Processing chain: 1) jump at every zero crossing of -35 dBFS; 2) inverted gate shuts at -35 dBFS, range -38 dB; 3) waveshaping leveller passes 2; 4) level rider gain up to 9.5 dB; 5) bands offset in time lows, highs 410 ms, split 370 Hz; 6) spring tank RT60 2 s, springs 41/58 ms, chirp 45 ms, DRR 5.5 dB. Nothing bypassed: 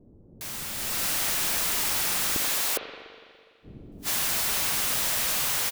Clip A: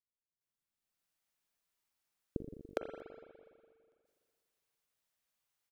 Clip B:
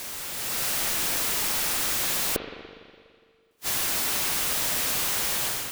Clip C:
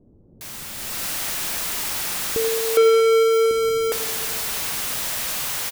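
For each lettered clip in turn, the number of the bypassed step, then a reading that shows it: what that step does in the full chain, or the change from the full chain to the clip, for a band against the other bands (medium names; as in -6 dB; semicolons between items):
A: 1, distortion -12 dB; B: 5, echo-to-direct 20.0 dB to -5.5 dB; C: 2, momentary loudness spread change +2 LU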